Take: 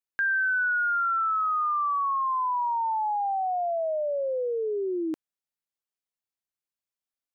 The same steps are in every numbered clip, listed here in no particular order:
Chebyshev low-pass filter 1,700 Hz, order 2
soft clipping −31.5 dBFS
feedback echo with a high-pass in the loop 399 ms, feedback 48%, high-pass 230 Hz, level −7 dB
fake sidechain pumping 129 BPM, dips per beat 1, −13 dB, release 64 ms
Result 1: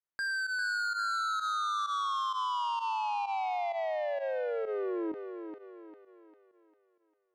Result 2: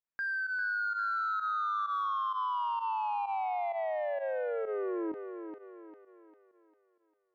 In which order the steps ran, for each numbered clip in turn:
Chebyshev low-pass filter, then soft clipping, then feedback echo with a high-pass in the loop, then fake sidechain pumping
soft clipping, then feedback echo with a high-pass in the loop, then fake sidechain pumping, then Chebyshev low-pass filter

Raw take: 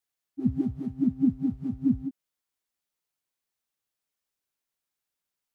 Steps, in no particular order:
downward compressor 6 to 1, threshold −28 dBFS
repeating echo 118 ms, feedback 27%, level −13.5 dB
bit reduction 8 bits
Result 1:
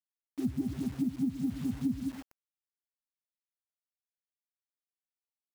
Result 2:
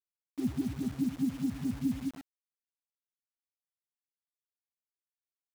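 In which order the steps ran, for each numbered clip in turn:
repeating echo, then bit reduction, then downward compressor
downward compressor, then repeating echo, then bit reduction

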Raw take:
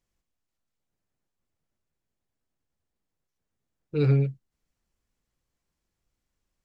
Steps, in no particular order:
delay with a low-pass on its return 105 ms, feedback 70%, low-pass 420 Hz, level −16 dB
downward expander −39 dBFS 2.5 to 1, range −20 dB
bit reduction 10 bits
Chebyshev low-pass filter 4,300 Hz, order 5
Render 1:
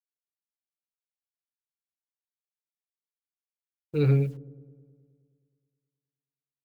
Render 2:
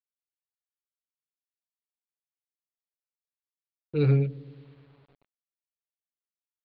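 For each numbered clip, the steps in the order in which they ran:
Chebyshev low-pass filter, then bit reduction, then downward expander, then delay with a low-pass on its return
downward expander, then delay with a low-pass on its return, then bit reduction, then Chebyshev low-pass filter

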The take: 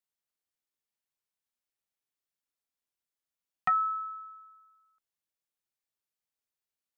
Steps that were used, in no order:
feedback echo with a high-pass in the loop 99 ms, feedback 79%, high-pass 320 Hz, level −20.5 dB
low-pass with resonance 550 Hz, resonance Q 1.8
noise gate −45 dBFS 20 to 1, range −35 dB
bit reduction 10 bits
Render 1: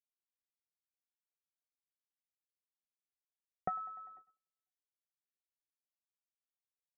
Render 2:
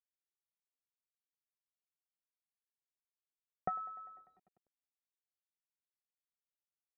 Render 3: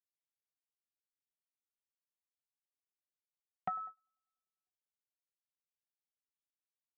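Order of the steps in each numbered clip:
feedback echo with a high-pass in the loop, then bit reduction, then noise gate, then low-pass with resonance
noise gate, then feedback echo with a high-pass in the loop, then bit reduction, then low-pass with resonance
feedback echo with a high-pass in the loop, then bit reduction, then low-pass with resonance, then noise gate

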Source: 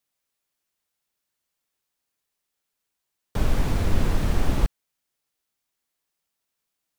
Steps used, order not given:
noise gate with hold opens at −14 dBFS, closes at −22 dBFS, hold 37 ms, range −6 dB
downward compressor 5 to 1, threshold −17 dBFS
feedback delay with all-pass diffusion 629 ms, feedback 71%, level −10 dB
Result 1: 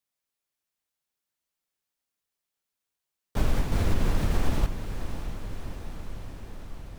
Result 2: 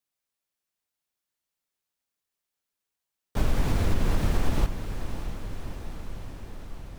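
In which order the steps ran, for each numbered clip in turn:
downward compressor, then noise gate with hold, then feedback delay with all-pass diffusion
noise gate with hold, then downward compressor, then feedback delay with all-pass diffusion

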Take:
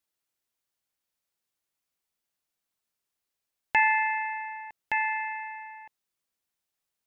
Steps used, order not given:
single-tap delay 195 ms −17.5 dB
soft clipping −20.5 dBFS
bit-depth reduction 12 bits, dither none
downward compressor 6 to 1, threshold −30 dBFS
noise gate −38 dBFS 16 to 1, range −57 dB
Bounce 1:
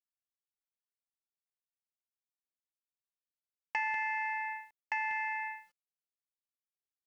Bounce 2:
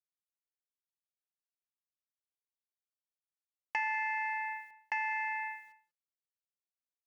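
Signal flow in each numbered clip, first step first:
downward compressor, then single-tap delay, then noise gate, then bit-depth reduction, then soft clipping
downward compressor, then noise gate, then soft clipping, then bit-depth reduction, then single-tap delay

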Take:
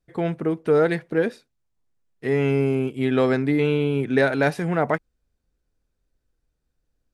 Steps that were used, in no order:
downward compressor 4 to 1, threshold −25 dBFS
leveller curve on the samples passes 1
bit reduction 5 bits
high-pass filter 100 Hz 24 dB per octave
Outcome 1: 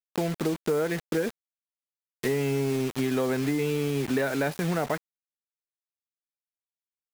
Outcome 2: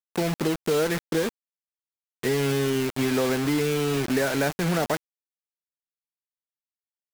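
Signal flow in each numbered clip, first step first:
leveller curve on the samples, then high-pass filter, then bit reduction, then downward compressor
downward compressor, then leveller curve on the samples, then high-pass filter, then bit reduction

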